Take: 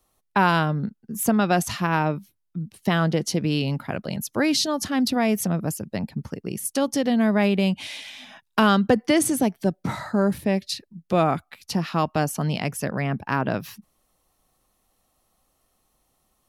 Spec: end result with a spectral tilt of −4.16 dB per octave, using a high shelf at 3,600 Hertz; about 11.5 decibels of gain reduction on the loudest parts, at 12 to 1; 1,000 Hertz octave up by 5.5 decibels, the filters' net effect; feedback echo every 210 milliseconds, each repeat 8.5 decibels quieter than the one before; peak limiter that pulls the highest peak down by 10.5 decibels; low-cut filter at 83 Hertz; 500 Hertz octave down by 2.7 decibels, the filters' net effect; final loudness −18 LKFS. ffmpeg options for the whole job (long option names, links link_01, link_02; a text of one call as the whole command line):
ffmpeg -i in.wav -af "highpass=83,equalizer=frequency=500:width_type=o:gain=-7,equalizer=frequency=1000:width_type=o:gain=8.5,highshelf=frequency=3600:gain=7.5,acompressor=threshold=-21dB:ratio=12,alimiter=limit=-17dB:level=0:latency=1,aecho=1:1:210|420|630|840:0.376|0.143|0.0543|0.0206,volume=10dB" out.wav